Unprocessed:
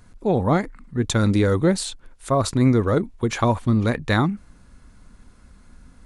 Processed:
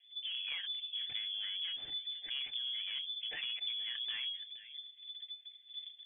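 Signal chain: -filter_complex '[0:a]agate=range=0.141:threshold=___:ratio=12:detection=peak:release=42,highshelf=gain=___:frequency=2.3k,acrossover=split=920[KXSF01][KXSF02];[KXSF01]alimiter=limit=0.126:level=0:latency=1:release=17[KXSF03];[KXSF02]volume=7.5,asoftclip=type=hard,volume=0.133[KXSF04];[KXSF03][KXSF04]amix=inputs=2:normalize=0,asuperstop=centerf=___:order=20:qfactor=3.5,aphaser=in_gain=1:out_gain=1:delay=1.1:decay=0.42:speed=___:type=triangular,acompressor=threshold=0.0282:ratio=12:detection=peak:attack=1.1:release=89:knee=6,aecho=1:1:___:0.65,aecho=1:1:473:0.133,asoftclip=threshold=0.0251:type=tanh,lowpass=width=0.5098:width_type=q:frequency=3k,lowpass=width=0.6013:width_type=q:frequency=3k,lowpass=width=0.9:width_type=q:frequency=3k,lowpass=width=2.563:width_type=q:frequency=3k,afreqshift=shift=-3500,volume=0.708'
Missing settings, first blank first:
0.00562, -7.5, 2300, 1.2, 6.9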